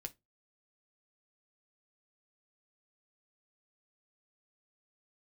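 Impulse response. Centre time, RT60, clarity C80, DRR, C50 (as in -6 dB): 4 ms, 0.20 s, 35.0 dB, 5.5 dB, 23.0 dB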